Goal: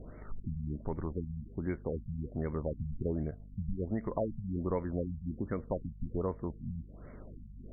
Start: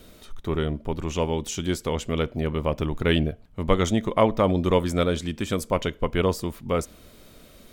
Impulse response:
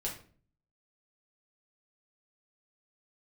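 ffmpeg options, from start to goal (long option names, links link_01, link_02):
-af "acompressor=threshold=-35dB:ratio=2.5,aeval=exprs='val(0)+0.00355*(sin(2*PI*50*n/s)+sin(2*PI*2*50*n/s)/2+sin(2*PI*3*50*n/s)/3+sin(2*PI*4*50*n/s)/4+sin(2*PI*5*50*n/s)/5)':channel_layout=same,afftfilt=real='re*lt(b*sr/1024,210*pow(2300/210,0.5+0.5*sin(2*PI*1.3*pts/sr)))':imag='im*lt(b*sr/1024,210*pow(2300/210,0.5+0.5*sin(2*PI*1.3*pts/sr)))':win_size=1024:overlap=0.75"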